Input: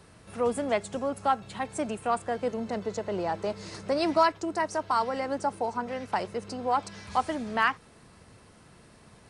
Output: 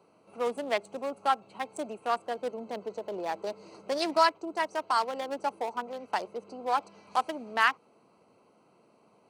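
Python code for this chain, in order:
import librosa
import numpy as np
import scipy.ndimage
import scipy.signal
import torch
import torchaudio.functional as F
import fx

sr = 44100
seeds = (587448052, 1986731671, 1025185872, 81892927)

y = fx.wiener(x, sr, points=25)
y = scipy.signal.sosfilt(scipy.signal.butter(2, 240.0, 'highpass', fs=sr, output='sos'), y)
y = fx.tilt_eq(y, sr, slope=2.5)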